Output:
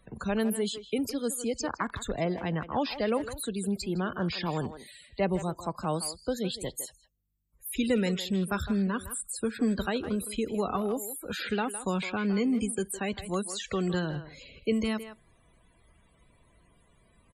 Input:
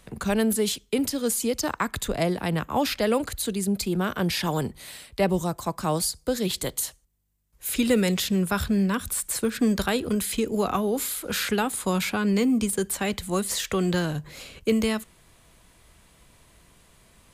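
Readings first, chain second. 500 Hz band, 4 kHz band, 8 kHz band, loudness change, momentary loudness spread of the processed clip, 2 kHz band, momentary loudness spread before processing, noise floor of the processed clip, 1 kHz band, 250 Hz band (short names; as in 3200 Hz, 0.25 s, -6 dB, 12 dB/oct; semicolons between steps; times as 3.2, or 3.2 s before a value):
-5.0 dB, -7.0 dB, -8.5 dB, -5.5 dB, 7 LU, -5.5 dB, 6 LU, -64 dBFS, -5.0 dB, -5.0 dB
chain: loudest bins only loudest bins 64; speakerphone echo 0.16 s, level -11 dB; gain -5 dB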